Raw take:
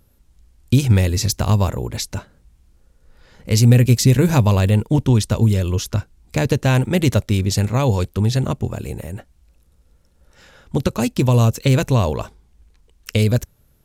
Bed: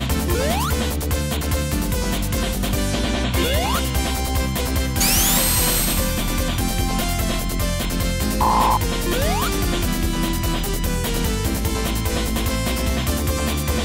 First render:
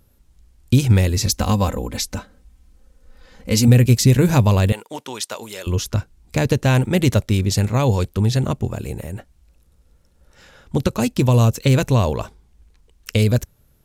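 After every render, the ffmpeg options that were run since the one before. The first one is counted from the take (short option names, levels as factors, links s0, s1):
-filter_complex "[0:a]asettb=1/sr,asplit=3[s0][s1][s2];[s0]atrim=end=1.264[s3];[s1]atrim=start=1.26:end=3.68,asetpts=PTS-STARTPTS,afade=t=in:d=0.004:c=qsin,afade=t=out:st=2.416:d=0.004:c=qsin,aecho=1:1:3.9:0.65,atrim=end_sample=106722[s4];[s2]atrim=start=3.676[s5];[s3][s4]acrossfade=d=0.004:c1=hsin:c2=qsin[s6];[s6][s5]acrossfade=d=0.004:c1=qsin:c2=hsin,asettb=1/sr,asplit=3[s7][s8][s9];[s7]atrim=end=4.724[s10];[s8]atrim=start=4.72:end=5.67,asetpts=PTS-STARTPTS,afade=t=in:d=0.004:c=qsin,afade=t=out:st=0.946:d=0.004:c=qsin,highpass=710[s11];[s9]atrim=start=5.666[s12];[s10][s11]acrossfade=d=0.004:c1=hsin:c2=qsin[s13];[s13][s12]acrossfade=d=0.004:c1=qsin:c2=hsin"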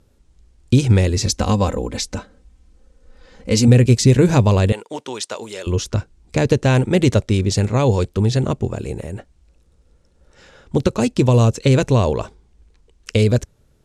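-af "lowpass=f=9100:w=0.5412,lowpass=f=9100:w=1.3066,equalizer=f=410:t=o:w=1:g=5"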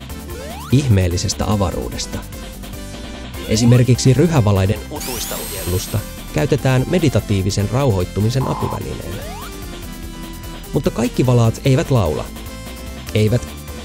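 -filter_complex "[1:a]volume=0.355[s0];[0:a][s0]amix=inputs=2:normalize=0"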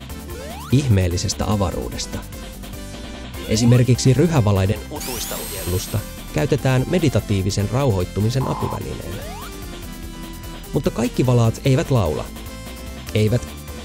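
-af "volume=0.75"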